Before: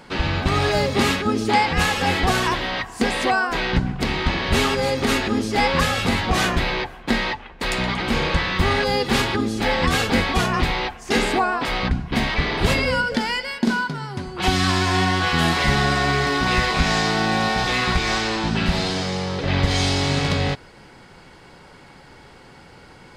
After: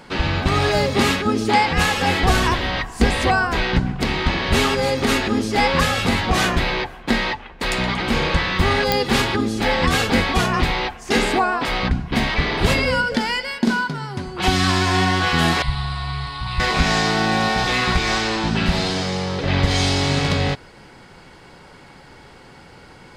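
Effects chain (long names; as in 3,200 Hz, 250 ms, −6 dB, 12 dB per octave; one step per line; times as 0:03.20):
0:02.25–0:03.63: sub-octave generator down 2 octaves, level +4 dB
0:15.62–0:16.60: drawn EQ curve 120 Hz 0 dB, 240 Hz −22 dB, 500 Hz −26 dB, 1,000 Hz −5 dB, 1,600 Hz −16 dB, 4,400 Hz −5 dB, 6,200 Hz −26 dB, 9,300 Hz −8 dB, 13,000 Hz −25 dB
digital clicks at 0:08.92, −4 dBFS
level +1.5 dB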